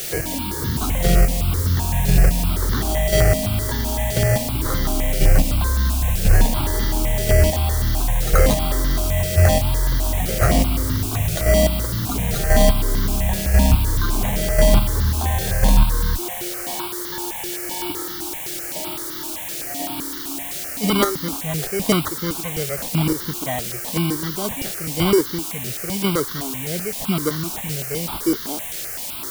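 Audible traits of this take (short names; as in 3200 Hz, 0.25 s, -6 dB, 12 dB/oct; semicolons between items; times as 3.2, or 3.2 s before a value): aliases and images of a low sample rate 2600 Hz, jitter 0%; chopped level 0.96 Hz, depth 60%, duty 20%; a quantiser's noise floor 6-bit, dither triangular; notches that jump at a steady rate 7.8 Hz 270–2500 Hz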